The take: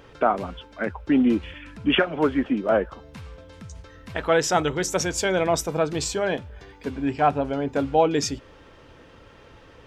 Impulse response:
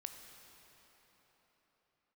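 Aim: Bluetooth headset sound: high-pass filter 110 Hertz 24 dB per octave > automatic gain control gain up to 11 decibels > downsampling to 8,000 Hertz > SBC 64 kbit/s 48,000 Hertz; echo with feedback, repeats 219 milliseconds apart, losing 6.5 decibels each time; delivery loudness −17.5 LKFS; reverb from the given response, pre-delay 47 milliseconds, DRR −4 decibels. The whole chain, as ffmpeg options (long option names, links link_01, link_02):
-filter_complex "[0:a]aecho=1:1:219|438|657|876|1095|1314:0.473|0.222|0.105|0.0491|0.0231|0.0109,asplit=2[link_01][link_02];[1:a]atrim=start_sample=2205,adelay=47[link_03];[link_02][link_03]afir=irnorm=-1:irlink=0,volume=7.5dB[link_04];[link_01][link_04]amix=inputs=2:normalize=0,highpass=frequency=110:width=0.5412,highpass=frequency=110:width=1.3066,dynaudnorm=maxgain=11dB,aresample=8000,aresample=44100,volume=0.5dB" -ar 48000 -c:a sbc -b:a 64k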